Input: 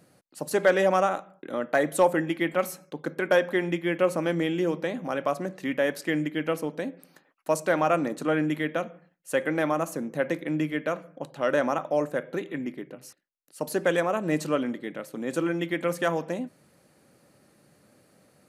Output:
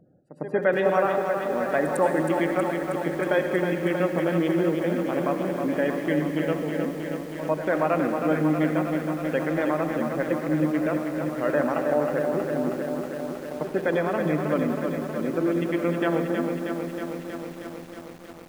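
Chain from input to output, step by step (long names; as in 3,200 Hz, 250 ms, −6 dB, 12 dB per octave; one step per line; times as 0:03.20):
adaptive Wiener filter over 41 samples
gate on every frequency bin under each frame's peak −30 dB strong
in parallel at +2.5 dB: brickwall limiter −20.5 dBFS, peak gain reduction 11 dB
on the sum: echo ahead of the sound 103 ms −13 dB
on a send at −7.5 dB: convolution reverb RT60 1.3 s, pre-delay 58 ms
on the sum: feedback echo at a low word length 318 ms, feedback 80%, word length 7 bits, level −6 dB
level −4.5 dB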